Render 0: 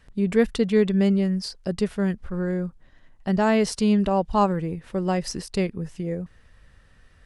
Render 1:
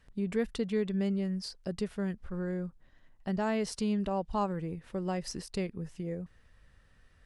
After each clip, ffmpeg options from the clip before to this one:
ffmpeg -i in.wav -af "acompressor=threshold=-25dB:ratio=1.5,volume=-7.5dB" out.wav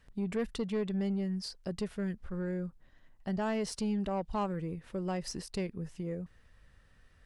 ffmpeg -i in.wav -af "asoftclip=type=tanh:threshold=-25.5dB" out.wav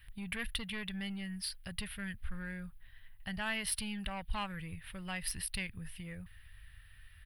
ffmpeg -i in.wav -af "firequalizer=gain_entry='entry(100,0);entry(150,-12);entry(370,-26);entry(770,-13);entry(1200,-9);entry(1700,1);entry(3200,4);entry(6800,-20);entry(9800,9)':delay=0.05:min_phase=1,volume=6.5dB" out.wav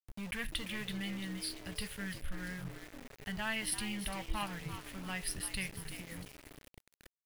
ffmpeg -i in.wav -filter_complex "[0:a]asplit=5[link_01][link_02][link_03][link_04][link_05];[link_02]adelay=342,afreqshift=120,volume=-10dB[link_06];[link_03]adelay=684,afreqshift=240,volume=-17.5dB[link_07];[link_04]adelay=1026,afreqshift=360,volume=-25.1dB[link_08];[link_05]adelay=1368,afreqshift=480,volume=-32.6dB[link_09];[link_01][link_06][link_07][link_08][link_09]amix=inputs=5:normalize=0,flanger=delay=8.6:depth=2.4:regen=-72:speed=0.84:shape=triangular,aeval=exprs='val(0)*gte(abs(val(0)),0.00335)':channel_layout=same,volume=4dB" out.wav

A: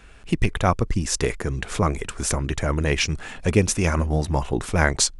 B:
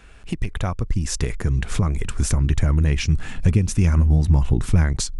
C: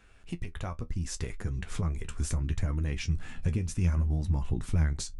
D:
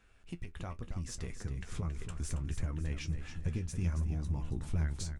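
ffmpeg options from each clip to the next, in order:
ffmpeg -i in.wav -af "acompressor=threshold=-23dB:ratio=6,asubboost=boost=6:cutoff=220" out.wav
ffmpeg -i in.wav -af "flanger=delay=9.6:depth=3.7:regen=49:speed=0.71:shape=triangular,volume=-7dB" out.wav
ffmpeg -i in.wav -filter_complex "[0:a]aeval=exprs='0.188*(cos(1*acos(clip(val(0)/0.188,-1,1)))-cos(1*PI/2))+0.00335*(cos(8*acos(clip(val(0)/0.188,-1,1)))-cos(8*PI/2))':channel_layout=same,asplit=2[link_01][link_02];[link_02]aecho=0:1:275|550|825|1100:0.355|0.142|0.0568|0.0227[link_03];[link_01][link_03]amix=inputs=2:normalize=0,volume=-6.5dB" out.wav

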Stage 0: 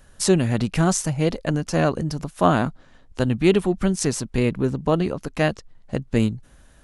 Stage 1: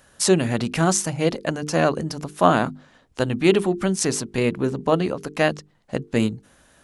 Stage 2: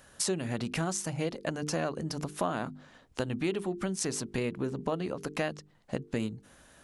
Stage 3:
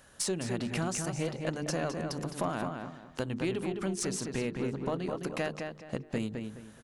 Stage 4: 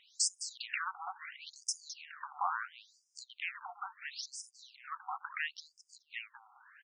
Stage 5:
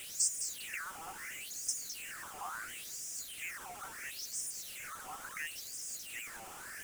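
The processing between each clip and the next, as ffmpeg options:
ffmpeg -i in.wav -af "highpass=frequency=210:poles=1,bandreject=frequency=50:width_type=h:width=6,bandreject=frequency=100:width_type=h:width=6,bandreject=frequency=150:width_type=h:width=6,bandreject=frequency=200:width_type=h:width=6,bandreject=frequency=250:width_type=h:width=6,bandreject=frequency=300:width_type=h:width=6,bandreject=frequency=350:width_type=h:width=6,bandreject=frequency=400:width_type=h:width=6,bandreject=frequency=450:width_type=h:width=6,volume=2.5dB" out.wav
ffmpeg -i in.wav -af "acompressor=threshold=-28dB:ratio=4,volume=-2dB" out.wav
ffmpeg -i in.wav -filter_complex "[0:a]aeval=exprs='(tanh(7.94*val(0)+0.15)-tanh(0.15))/7.94':channel_layout=same,asplit=2[link_01][link_02];[link_02]adelay=211,lowpass=frequency=3600:poles=1,volume=-5dB,asplit=2[link_03][link_04];[link_04]adelay=211,lowpass=frequency=3600:poles=1,volume=0.29,asplit=2[link_05][link_06];[link_06]adelay=211,lowpass=frequency=3600:poles=1,volume=0.29,asplit=2[link_07][link_08];[link_08]adelay=211,lowpass=frequency=3600:poles=1,volume=0.29[link_09];[link_03][link_05][link_07][link_09]amix=inputs=4:normalize=0[link_10];[link_01][link_10]amix=inputs=2:normalize=0,volume=-1dB" out.wav
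ffmpeg -i in.wav -af "afftfilt=real='re*between(b*sr/1024,980*pow(7000/980,0.5+0.5*sin(2*PI*0.73*pts/sr))/1.41,980*pow(7000/980,0.5+0.5*sin(2*PI*0.73*pts/sr))*1.41)':imag='im*between(b*sr/1024,980*pow(7000/980,0.5+0.5*sin(2*PI*0.73*pts/sr))/1.41,980*pow(7000/980,0.5+0.5*sin(2*PI*0.73*pts/sr))*1.41)':win_size=1024:overlap=0.75,volume=4.5dB" out.wav
ffmpeg -i in.wav -af "aeval=exprs='val(0)+0.5*0.0188*sgn(val(0))':channel_layout=same,equalizer=frequency=1000:width_type=o:width=1:gain=-11,equalizer=frequency=4000:width_type=o:width=1:gain=-12,equalizer=frequency=8000:width_type=o:width=1:gain=6,volume=-2.5dB" out.wav

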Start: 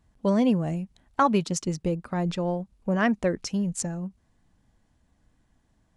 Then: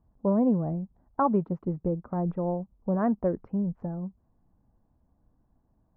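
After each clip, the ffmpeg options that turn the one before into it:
ffmpeg -i in.wav -af "lowpass=frequency=1100:width=0.5412,lowpass=frequency=1100:width=1.3066,volume=-1.5dB" out.wav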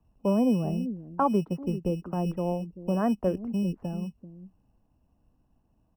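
ffmpeg -i in.wav -filter_complex "[0:a]acrossover=split=190|360|700[link_01][link_02][link_03][link_04];[link_01]acrusher=samples=16:mix=1:aa=0.000001[link_05];[link_02]aecho=1:1:389:0.596[link_06];[link_05][link_06][link_03][link_04]amix=inputs=4:normalize=0" out.wav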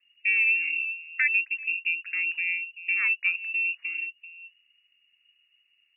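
ffmpeg -i in.wav -af "lowpass=frequency=2500:width_type=q:width=0.5098,lowpass=frequency=2500:width_type=q:width=0.6013,lowpass=frequency=2500:width_type=q:width=0.9,lowpass=frequency=2500:width_type=q:width=2.563,afreqshift=-2900" out.wav

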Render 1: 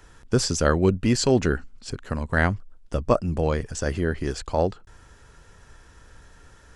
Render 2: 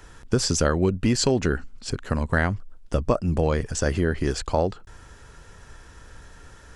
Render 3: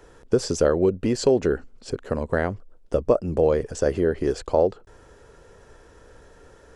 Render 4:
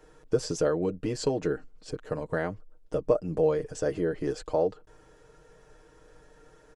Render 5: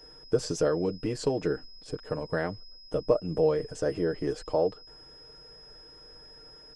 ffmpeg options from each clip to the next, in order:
ffmpeg -i in.wav -af "acompressor=threshold=-21dB:ratio=6,volume=4dB" out.wav
ffmpeg -i in.wav -af "equalizer=frequency=470:width=0.96:gain=13.5,volume=-7dB" out.wav
ffmpeg -i in.wav -af "aecho=1:1:6.5:0.69,volume=-7.5dB" out.wav
ffmpeg -i in.wav -af "aeval=exprs='val(0)+0.00355*sin(2*PI*5100*n/s)':channel_layout=same" -ar 48000 -c:a libopus -b:a 32k out.opus

